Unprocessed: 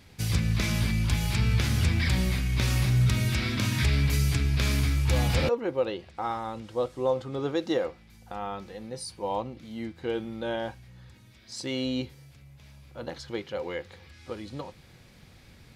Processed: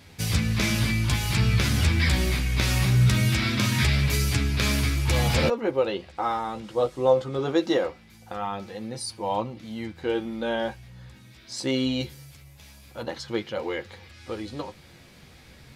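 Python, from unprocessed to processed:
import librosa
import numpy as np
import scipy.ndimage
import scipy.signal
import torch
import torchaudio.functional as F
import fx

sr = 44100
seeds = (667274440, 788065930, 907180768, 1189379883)

y = fx.low_shelf(x, sr, hz=120.0, db=-5.5)
y = fx.chorus_voices(y, sr, voices=2, hz=0.22, base_ms=12, depth_ms=3.4, mix_pct=35)
y = fx.high_shelf(y, sr, hz=5400.0, db=9.5, at=(12.0, 13.03))
y = y * librosa.db_to_amplitude(7.5)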